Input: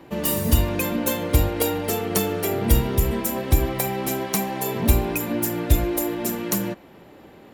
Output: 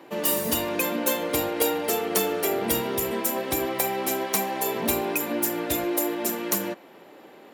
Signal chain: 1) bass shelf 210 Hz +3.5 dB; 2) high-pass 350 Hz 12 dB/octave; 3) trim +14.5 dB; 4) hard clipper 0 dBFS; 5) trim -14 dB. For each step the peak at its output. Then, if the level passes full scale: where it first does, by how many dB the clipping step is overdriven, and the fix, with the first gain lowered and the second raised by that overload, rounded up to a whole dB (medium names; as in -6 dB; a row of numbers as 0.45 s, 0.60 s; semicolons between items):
-1.5 dBFS, -6.0 dBFS, +8.5 dBFS, 0.0 dBFS, -14.0 dBFS; step 3, 8.5 dB; step 3 +5.5 dB, step 5 -5 dB